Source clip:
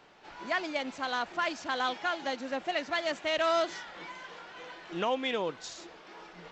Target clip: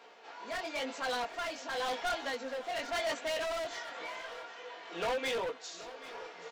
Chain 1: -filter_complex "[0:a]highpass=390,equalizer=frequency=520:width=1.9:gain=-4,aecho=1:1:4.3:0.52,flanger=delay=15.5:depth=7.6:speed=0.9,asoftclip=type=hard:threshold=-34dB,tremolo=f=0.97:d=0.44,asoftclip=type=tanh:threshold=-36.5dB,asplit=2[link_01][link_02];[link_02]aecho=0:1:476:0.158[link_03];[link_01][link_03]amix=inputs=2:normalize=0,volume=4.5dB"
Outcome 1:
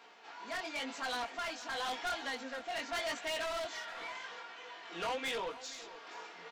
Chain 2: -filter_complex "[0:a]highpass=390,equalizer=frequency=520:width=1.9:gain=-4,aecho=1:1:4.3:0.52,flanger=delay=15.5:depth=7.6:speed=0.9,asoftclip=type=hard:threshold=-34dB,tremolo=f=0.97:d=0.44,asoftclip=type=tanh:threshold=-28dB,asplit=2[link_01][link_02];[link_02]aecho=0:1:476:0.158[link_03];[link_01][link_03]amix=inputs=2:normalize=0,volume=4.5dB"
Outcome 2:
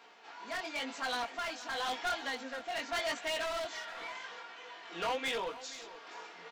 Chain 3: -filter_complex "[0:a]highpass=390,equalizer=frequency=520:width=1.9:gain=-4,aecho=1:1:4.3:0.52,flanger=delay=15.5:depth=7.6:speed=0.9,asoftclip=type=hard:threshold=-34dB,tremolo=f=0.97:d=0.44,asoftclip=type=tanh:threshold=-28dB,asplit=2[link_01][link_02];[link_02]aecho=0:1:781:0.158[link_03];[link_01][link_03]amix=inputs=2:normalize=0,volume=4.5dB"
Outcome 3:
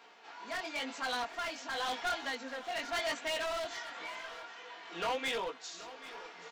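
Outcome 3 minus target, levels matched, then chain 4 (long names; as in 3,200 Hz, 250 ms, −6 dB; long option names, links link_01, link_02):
500 Hz band −3.0 dB
-filter_complex "[0:a]highpass=390,equalizer=frequency=520:width=1.9:gain=4,aecho=1:1:4.3:0.52,flanger=delay=15.5:depth=7.6:speed=0.9,asoftclip=type=hard:threshold=-34dB,tremolo=f=0.97:d=0.44,asoftclip=type=tanh:threshold=-28dB,asplit=2[link_01][link_02];[link_02]aecho=0:1:781:0.158[link_03];[link_01][link_03]amix=inputs=2:normalize=0,volume=4.5dB"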